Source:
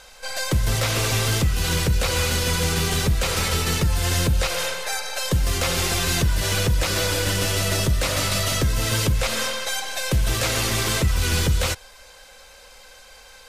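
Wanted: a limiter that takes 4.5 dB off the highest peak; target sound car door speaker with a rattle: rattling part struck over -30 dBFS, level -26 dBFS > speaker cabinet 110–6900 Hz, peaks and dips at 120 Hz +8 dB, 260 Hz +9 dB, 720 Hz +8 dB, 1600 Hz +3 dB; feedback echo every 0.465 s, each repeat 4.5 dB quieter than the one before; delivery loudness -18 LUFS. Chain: limiter -16 dBFS; feedback echo 0.465 s, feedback 60%, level -4.5 dB; rattling part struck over -30 dBFS, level -26 dBFS; speaker cabinet 110–6900 Hz, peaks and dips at 120 Hz +8 dB, 260 Hz +9 dB, 720 Hz +8 dB, 1600 Hz +3 dB; gain +5 dB

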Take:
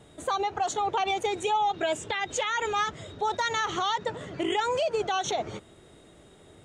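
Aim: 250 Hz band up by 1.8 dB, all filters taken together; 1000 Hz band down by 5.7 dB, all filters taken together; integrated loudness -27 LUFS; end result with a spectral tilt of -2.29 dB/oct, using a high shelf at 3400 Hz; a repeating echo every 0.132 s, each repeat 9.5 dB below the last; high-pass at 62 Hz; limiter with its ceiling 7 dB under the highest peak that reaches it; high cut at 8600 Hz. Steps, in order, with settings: HPF 62 Hz; LPF 8600 Hz; bell 250 Hz +4 dB; bell 1000 Hz -8.5 dB; high shelf 3400 Hz +6 dB; limiter -22 dBFS; feedback echo 0.132 s, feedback 33%, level -9.5 dB; gain +4 dB

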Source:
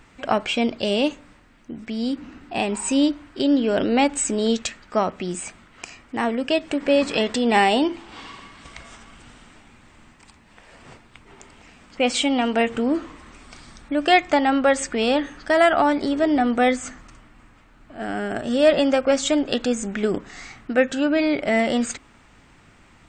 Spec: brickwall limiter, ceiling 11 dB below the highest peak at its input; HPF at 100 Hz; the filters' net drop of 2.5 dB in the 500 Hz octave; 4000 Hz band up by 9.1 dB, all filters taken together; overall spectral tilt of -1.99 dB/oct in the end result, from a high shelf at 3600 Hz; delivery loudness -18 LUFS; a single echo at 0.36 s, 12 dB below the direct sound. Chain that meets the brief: HPF 100 Hz; bell 500 Hz -3.5 dB; high shelf 3600 Hz +6 dB; bell 4000 Hz +8.5 dB; limiter -10 dBFS; echo 0.36 s -12 dB; gain +3.5 dB

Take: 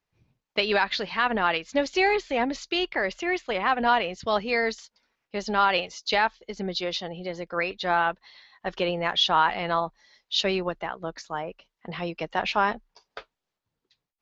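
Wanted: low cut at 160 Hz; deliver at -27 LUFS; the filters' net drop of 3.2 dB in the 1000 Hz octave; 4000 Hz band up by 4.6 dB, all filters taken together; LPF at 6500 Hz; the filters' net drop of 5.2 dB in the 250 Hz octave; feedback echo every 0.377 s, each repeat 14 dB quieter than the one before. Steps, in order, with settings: HPF 160 Hz; LPF 6500 Hz; bell 250 Hz -6.5 dB; bell 1000 Hz -4 dB; bell 4000 Hz +6.5 dB; feedback echo 0.377 s, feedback 20%, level -14 dB; gain -1.5 dB

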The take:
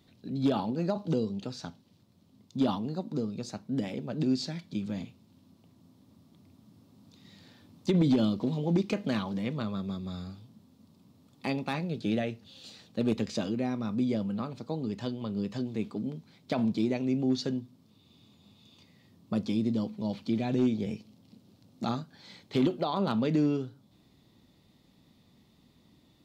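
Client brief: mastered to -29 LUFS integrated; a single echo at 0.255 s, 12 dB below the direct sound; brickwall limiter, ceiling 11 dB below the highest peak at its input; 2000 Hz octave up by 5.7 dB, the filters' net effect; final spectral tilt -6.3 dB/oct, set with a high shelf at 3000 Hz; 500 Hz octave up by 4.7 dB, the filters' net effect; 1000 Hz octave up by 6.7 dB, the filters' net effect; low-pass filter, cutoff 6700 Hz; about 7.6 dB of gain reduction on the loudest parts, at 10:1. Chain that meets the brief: LPF 6700 Hz; bell 500 Hz +4.5 dB; bell 1000 Hz +6 dB; bell 2000 Hz +6.5 dB; high shelf 3000 Hz -3 dB; compressor 10:1, threshold -27 dBFS; limiter -25 dBFS; echo 0.255 s -12 dB; gain +6.5 dB

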